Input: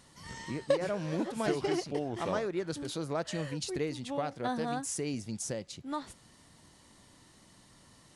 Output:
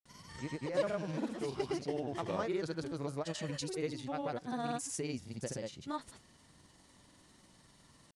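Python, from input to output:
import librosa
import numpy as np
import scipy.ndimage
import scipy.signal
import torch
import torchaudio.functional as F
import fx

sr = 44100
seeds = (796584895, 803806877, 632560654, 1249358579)

y = fx.granulator(x, sr, seeds[0], grain_ms=100.0, per_s=20.0, spray_ms=100.0, spread_st=0)
y = y * librosa.db_to_amplitude(-2.0)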